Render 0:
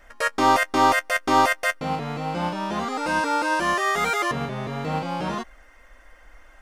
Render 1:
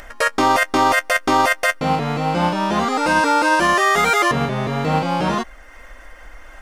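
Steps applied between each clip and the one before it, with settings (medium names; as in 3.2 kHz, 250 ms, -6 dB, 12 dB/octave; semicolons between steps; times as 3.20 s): upward compressor, threshold -41 dBFS; loudness maximiser +14 dB; trim -6 dB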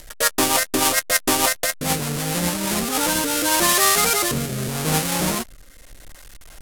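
square wave that keeps the level; peaking EQ 11 kHz +14 dB 1.9 oct; rotary cabinet horn 6.7 Hz, later 0.8 Hz, at 2.33 s; trim -7.5 dB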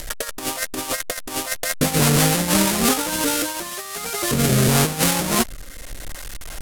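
compressor with a negative ratio -25 dBFS, ratio -0.5; trim +5 dB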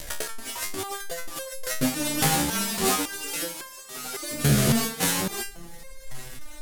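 bucket-brigade echo 263 ms, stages 2048, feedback 77%, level -24 dB; wow and flutter 27 cents; resonator arpeggio 3.6 Hz 72–530 Hz; trim +5 dB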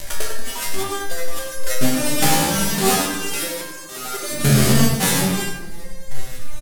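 delay 98 ms -9.5 dB; simulated room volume 410 m³, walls mixed, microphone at 1.2 m; trim +3 dB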